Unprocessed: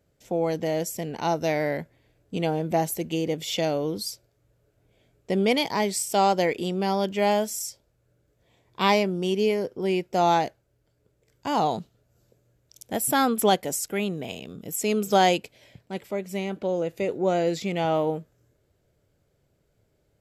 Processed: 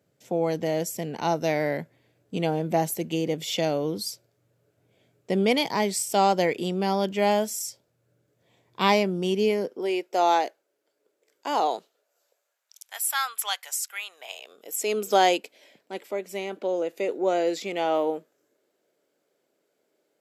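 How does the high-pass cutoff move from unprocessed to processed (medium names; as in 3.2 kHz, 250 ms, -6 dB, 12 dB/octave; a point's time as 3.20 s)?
high-pass 24 dB/octave
9.47 s 110 Hz
9.90 s 330 Hz
11.65 s 330 Hz
12.94 s 1.1 kHz
13.99 s 1.1 kHz
14.98 s 270 Hz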